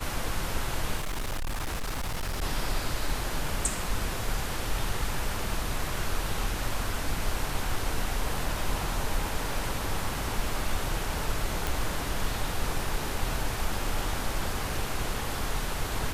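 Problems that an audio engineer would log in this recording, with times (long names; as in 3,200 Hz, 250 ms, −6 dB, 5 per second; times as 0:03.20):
0:00.96–0:02.43: clipping −27.5 dBFS
0:11.67: click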